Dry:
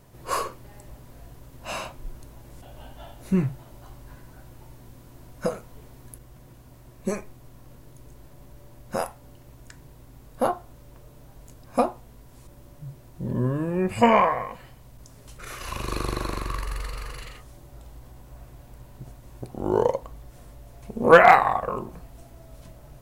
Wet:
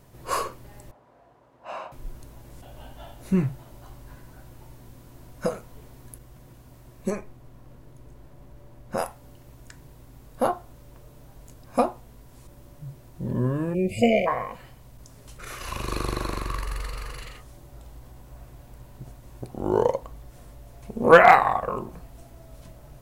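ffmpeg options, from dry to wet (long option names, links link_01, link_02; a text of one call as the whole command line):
ffmpeg -i in.wav -filter_complex "[0:a]asettb=1/sr,asplit=3[link_01][link_02][link_03];[link_01]atrim=end=0.914[link_04];[link_02]atrim=start=0.91:end=1.92,asetpts=PTS-STARTPTS,afade=type=in:duration=0.004:curve=qsin,afade=type=out:start_time=1.006:duration=0.004:curve=qsin,bandpass=frequency=810:width_type=q:width=1.1[link_05];[link_03]atrim=start=1.916[link_06];[link_04][link_05]acrossfade=duration=0.004:curve1=hsin:curve2=qsin[link_07];[link_07][link_06]acrossfade=duration=0.004:curve1=qsin:curve2=hsin,asettb=1/sr,asplit=3[link_08][link_09][link_10];[link_08]atrim=end=7.104[link_11];[link_09]atrim=start=7.1:end=8.98,asetpts=PTS-STARTPTS,afade=type=in:duration=0.004:curve=qsin,afade=type=out:start_time=1.876:duration=0.004:curve=qsin,highshelf=frequency=3300:gain=-8.5[link_12];[link_10]atrim=start=8.976[link_13];[link_11][link_12]acrossfade=duration=0.004:curve1=hsin:curve2=qsin[link_14];[link_14][link_13]acrossfade=duration=0.004:curve1=qsin:curve2=hsin,asplit=3[link_15][link_16][link_17];[link_15]afade=type=out:start_time=13.73:duration=0.02[link_18];[link_16]asuperstop=centerf=1200:order=20:qfactor=0.88,afade=type=in:start_time=13.73:duration=0.02,afade=type=out:start_time=14.26:duration=0.02[link_19];[link_17]afade=type=in:start_time=14.26:duration=0.02[link_20];[link_18][link_19][link_20]amix=inputs=3:normalize=0" out.wav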